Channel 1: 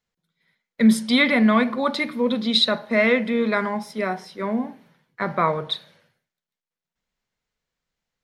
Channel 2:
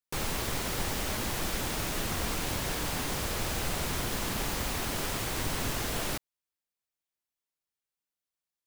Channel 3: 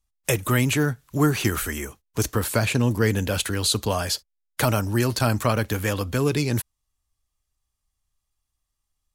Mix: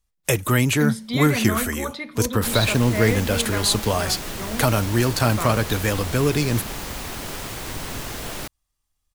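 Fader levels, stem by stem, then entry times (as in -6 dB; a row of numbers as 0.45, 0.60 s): -8.0, +1.0, +2.0 dB; 0.00, 2.30, 0.00 s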